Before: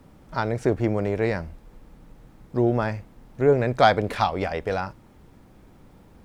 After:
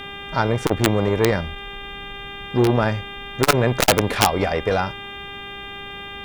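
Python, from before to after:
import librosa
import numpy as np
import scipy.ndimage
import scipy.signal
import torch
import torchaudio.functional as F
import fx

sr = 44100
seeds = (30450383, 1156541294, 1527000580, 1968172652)

y = fx.dmg_buzz(x, sr, base_hz=400.0, harmonics=9, level_db=-42.0, tilt_db=0, odd_only=False)
y = (np.mod(10.0 ** (11.5 / 20.0) * y + 1.0, 2.0) - 1.0) / 10.0 ** (11.5 / 20.0)
y = fx.transformer_sat(y, sr, knee_hz=360.0)
y = F.gain(torch.from_numpy(y), 7.0).numpy()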